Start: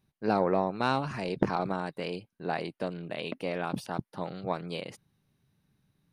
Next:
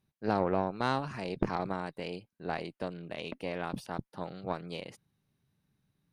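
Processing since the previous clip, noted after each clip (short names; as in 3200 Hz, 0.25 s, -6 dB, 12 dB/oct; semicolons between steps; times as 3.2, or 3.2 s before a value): tube stage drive 15 dB, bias 0.75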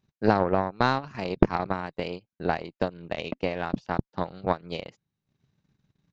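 transient shaper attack +8 dB, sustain -11 dB; downsampling 16000 Hz; gain +4 dB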